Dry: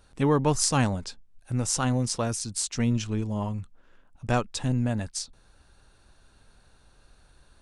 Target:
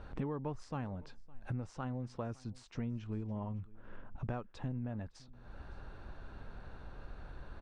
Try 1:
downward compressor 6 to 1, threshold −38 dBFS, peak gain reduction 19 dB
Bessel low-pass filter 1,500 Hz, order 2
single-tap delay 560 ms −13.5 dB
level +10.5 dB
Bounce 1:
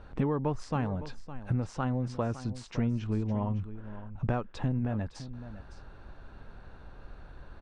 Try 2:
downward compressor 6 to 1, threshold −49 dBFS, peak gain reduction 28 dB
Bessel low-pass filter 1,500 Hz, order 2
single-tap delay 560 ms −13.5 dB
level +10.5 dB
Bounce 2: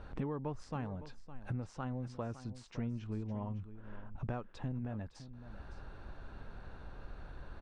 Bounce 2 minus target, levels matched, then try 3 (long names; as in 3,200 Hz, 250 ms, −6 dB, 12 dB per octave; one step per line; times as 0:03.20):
echo-to-direct +9.5 dB
downward compressor 6 to 1, threshold −49 dBFS, peak gain reduction 28 dB
Bessel low-pass filter 1,500 Hz, order 2
single-tap delay 560 ms −23 dB
level +10.5 dB